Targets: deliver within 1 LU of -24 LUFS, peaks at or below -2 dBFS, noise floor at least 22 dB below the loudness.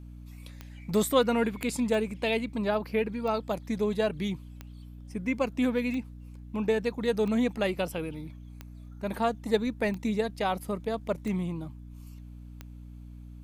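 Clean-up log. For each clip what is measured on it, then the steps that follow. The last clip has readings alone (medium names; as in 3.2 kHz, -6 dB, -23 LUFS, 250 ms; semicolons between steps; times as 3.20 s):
clicks found 10; hum 60 Hz; highest harmonic 300 Hz; hum level -42 dBFS; loudness -29.5 LUFS; peak level -11.5 dBFS; loudness target -24.0 LUFS
-> de-click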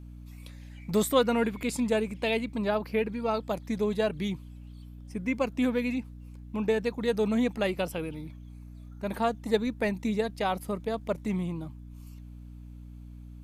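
clicks found 0; hum 60 Hz; highest harmonic 300 Hz; hum level -42 dBFS
-> hum notches 60/120/180/240/300 Hz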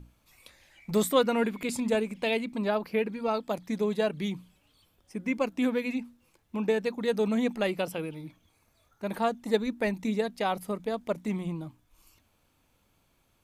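hum not found; loudness -30.0 LUFS; peak level -11.5 dBFS; loudness target -24.0 LUFS
-> trim +6 dB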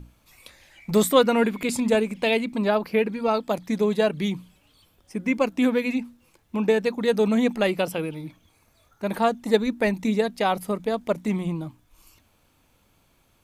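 loudness -24.0 LUFS; peak level -5.5 dBFS; noise floor -64 dBFS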